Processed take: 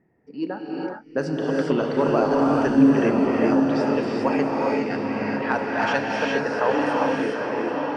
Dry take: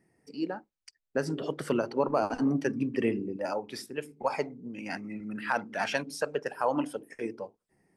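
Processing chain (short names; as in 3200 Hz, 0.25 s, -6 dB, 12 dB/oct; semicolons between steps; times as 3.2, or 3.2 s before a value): LPF 8000 Hz 12 dB/oct; high shelf 6100 Hz -7.5 dB; diffused feedback echo 0.904 s, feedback 55%, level -5.5 dB; in parallel at -11 dB: soft clip -25 dBFS, distortion -11 dB; on the sum: low-pass opened by the level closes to 1800 Hz, open at -21.5 dBFS; non-linear reverb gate 0.44 s rising, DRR -2 dB; gain +2.5 dB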